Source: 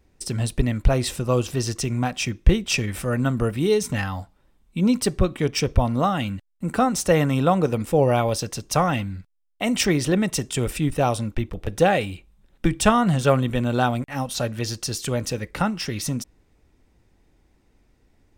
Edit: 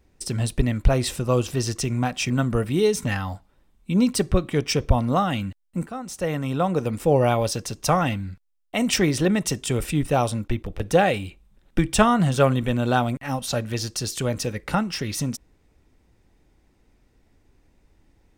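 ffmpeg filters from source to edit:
-filter_complex "[0:a]asplit=3[s0][s1][s2];[s0]atrim=end=2.302[s3];[s1]atrim=start=3.168:end=6.74,asetpts=PTS-STARTPTS,afade=t=out:st=3.568:d=0.004:c=hsin:silence=0.149624[s4];[s2]atrim=start=6.74,asetpts=PTS-STARTPTS,afade=t=in:d=1.29:silence=0.149624[s5];[s4][s5]concat=n=2:v=0:a=1[s6];[s3][s6]acrossfade=d=0.004:c1=hsin:c2=hsin"

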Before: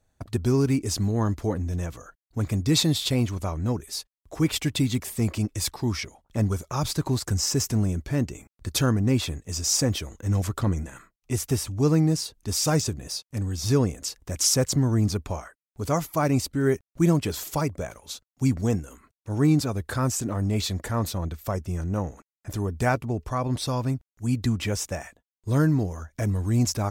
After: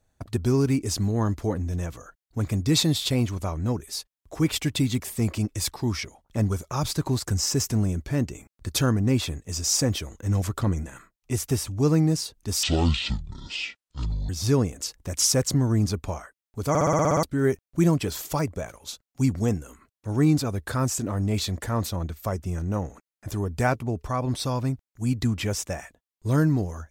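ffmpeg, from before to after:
-filter_complex "[0:a]asplit=12[s0][s1][s2][s3][s4][s5][s6][s7][s8][s9][s10][s11];[s0]atrim=end=12.634[s12];[s1]atrim=start=12.63:end=13.51,asetpts=PTS-STARTPTS,asetrate=23373,aresample=44100[s13];[s2]atrim=start=13.506:end=15.972[s14];[s3]atrim=start=15.908:end=15.972[s15];[s4]atrim=start=15.908:end=15.972[s16];[s5]atrim=start=15.908:end=15.972[s17];[s6]atrim=start=15.908:end=15.972[s18];[s7]atrim=start=15.908:end=15.972[s19];[s8]atrim=start=15.908:end=15.972[s20];[s9]atrim=start=15.908:end=15.972[s21];[s10]atrim=start=15.908:end=15.972[s22];[s11]atrim=start=16.448[s23];[s12][s13]acrossfade=d=0.004:c1=hsin:c2=hsin[s24];[s24][s14]acrossfade=d=0.004:c1=hsin:c2=hsin[s25];[s25][s15]acrossfade=d=0.004:c1=hsin:c2=hsin[s26];[s26][s16]acrossfade=d=0.004:c1=hsin:c2=hsin[s27];[s27][s17]acrossfade=d=0.004:c1=hsin:c2=hsin[s28];[s28][s18]acrossfade=d=0.004:c1=hsin:c2=hsin[s29];[s29][s19]acrossfade=d=0.004:c1=hsin:c2=hsin[s30];[s30][s20]acrossfade=d=0.004:c1=hsin:c2=hsin[s31];[s31][s21]acrossfade=d=0.004:c1=hsin:c2=hsin[s32];[s32][s22]acrossfade=d=0.004:c1=hsin:c2=hsin[s33];[s33][s23]acrossfade=d=0.004:c1=hsin:c2=hsin"

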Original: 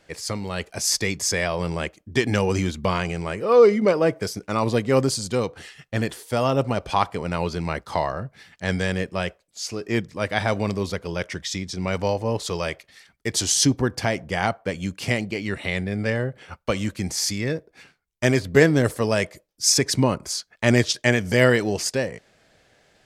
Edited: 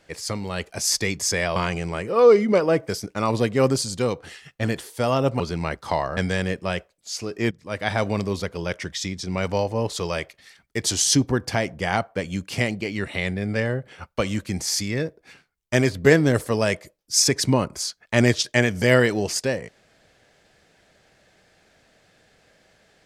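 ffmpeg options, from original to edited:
-filter_complex "[0:a]asplit=5[s0][s1][s2][s3][s4];[s0]atrim=end=1.562[s5];[s1]atrim=start=2.888:end=6.732[s6];[s2]atrim=start=7.438:end=8.212[s7];[s3]atrim=start=8.668:end=10.01,asetpts=PTS-STARTPTS,afade=t=out:st=1.338:d=0.004:c=hsin:silence=0.188365[s8];[s4]atrim=start=10.01,asetpts=PTS-STARTPTS,afade=t=in:d=0.6:c=qsin:silence=0.188365[s9];[s5][s6]acrossfade=d=0.004:c1=hsin:c2=hsin[s10];[s10][s7]acrossfade=d=0.004:c1=hsin:c2=hsin[s11];[s8][s9]concat=n=2:v=0:a=1[s12];[s11][s12]acrossfade=d=0.004:c1=hsin:c2=hsin"

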